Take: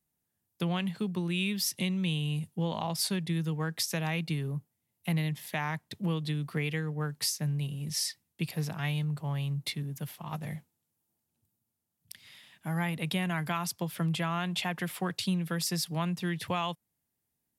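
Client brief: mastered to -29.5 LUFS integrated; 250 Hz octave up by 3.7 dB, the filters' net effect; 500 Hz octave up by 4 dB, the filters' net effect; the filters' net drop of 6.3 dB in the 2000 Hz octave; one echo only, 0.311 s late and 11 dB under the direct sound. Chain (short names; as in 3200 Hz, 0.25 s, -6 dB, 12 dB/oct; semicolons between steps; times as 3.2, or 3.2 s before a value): bell 250 Hz +6.5 dB; bell 500 Hz +3.5 dB; bell 2000 Hz -8.5 dB; echo 0.311 s -11 dB; gain +1 dB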